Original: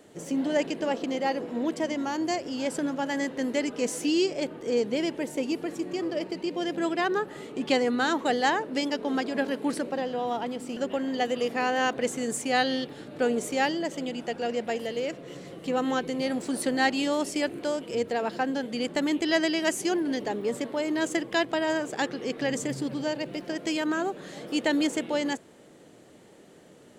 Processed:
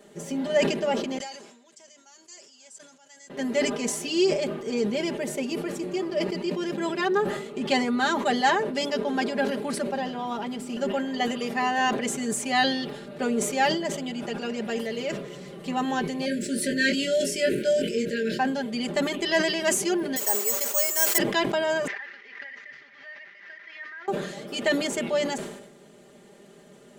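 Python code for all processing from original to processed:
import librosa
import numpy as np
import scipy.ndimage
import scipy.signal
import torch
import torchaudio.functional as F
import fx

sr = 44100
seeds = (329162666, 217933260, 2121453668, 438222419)

y = fx.chain(x, sr, fx.tilt_eq(slope=-2.0),
    fx.auto_swell(attack_ms=348.0),
    fx.bandpass_q(hz=7000.0, q=2.9), at=(1.18, 3.3))
y = fx.chain(y, sr, fx.brickwall_bandstop(low_hz=620.0, high_hz=1400.0),
    fx.doubler(ms=22.0, db=-4.0), at=(16.25, 18.39))
y = fx.chain(y, sr, fx.delta_mod(bps=64000, step_db=-38.0),
    fx.highpass(hz=670.0, slope=12),
    fx.resample_bad(factor=6, down='filtered', up='zero_stuff'), at=(20.16, 21.18))
y = fx.chain(y, sr, fx.delta_mod(bps=32000, step_db=-35.5),
    fx.bandpass_q(hz=1900.0, q=10.0),
    fx.pre_swell(db_per_s=62.0), at=(21.87, 24.08))
y = y + 0.99 * np.pad(y, (int(5.0 * sr / 1000.0), 0))[:len(y)]
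y = fx.sustainer(y, sr, db_per_s=61.0)
y = y * librosa.db_to_amplitude(-1.5)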